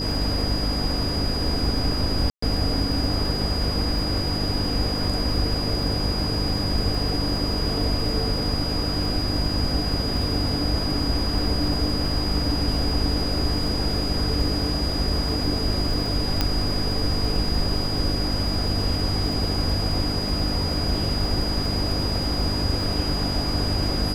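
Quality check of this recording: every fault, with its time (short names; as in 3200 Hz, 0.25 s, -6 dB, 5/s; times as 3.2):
crackle 32/s -30 dBFS
hum 50 Hz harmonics 6 -29 dBFS
tone 4900 Hz -28 dBFS
2.3–2.42 gap 0.124 s
16.41 pop -6 dBFS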